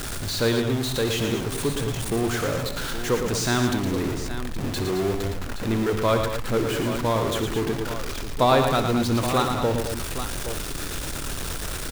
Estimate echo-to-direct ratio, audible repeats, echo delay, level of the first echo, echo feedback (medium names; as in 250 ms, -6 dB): -3.0 dB, 4, 62 ms, -13.0 dB, no regular repeats